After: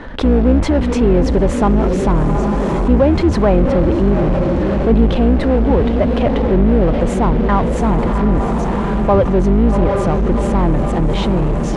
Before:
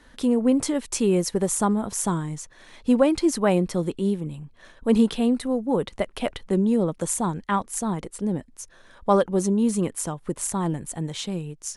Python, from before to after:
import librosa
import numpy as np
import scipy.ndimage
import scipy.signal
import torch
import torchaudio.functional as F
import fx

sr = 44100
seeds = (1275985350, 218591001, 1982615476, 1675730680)

p1 = fx.octave_divider(x, sr, octaves=2, level_db=2.0)
p2 = fx.peak_eq(p1, sr, hz=650.0, db=6.0, octaves=1.8)
p3 = fx.echo_diffused(p2, sr, ms=733, feedback_pct=49, wet_db=-10.5)
p4 = fx.fuzz(p3, sr, gain_db=39.0, gate_db=-39.0)
p5 = p3 + (p4 * librosa.db_to_amplitude(-10.0))
p6 = scipy.signal.sosfilt(scipy.signal.butter(2, 2600.0, 'lowpass', fs=sr, output='sos'), p5)
p7 = fx.low_shelf(p6, sr, hz=360.0, db=4.5)
p8 = fx.env_flatten(p7, sr, amount_pct=50)
y = p8 * librosa.db_to_amplitude(-3.5)